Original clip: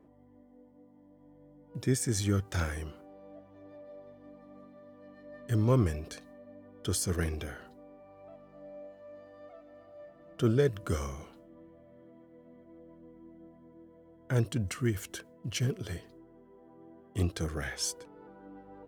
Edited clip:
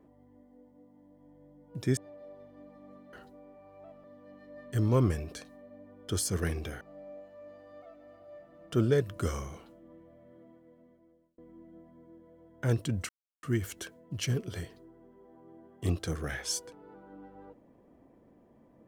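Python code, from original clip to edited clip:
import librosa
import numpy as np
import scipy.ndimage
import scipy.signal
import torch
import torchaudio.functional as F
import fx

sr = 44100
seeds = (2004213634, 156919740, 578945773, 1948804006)

y = fx.edit(x, sr, fx.cut(start_s=1.97, length_s=1.67),
    fx.move(start_s=7.57, length_s=0.91, to_s=4.8),
    fx.fade_out_span(start_s=12.09, length_s=0.96),
    fx.insert_silence(at_s=14.76, length_s=0.34), tone=tone)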